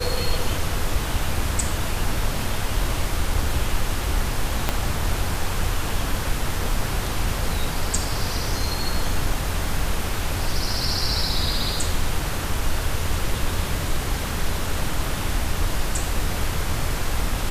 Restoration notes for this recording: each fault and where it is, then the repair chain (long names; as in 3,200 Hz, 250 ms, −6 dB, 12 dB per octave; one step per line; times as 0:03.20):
0:04.69: click −6 dBFS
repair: click removal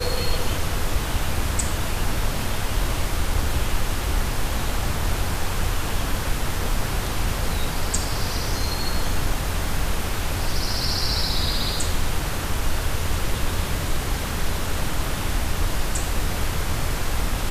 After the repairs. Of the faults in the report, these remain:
0:04.69: click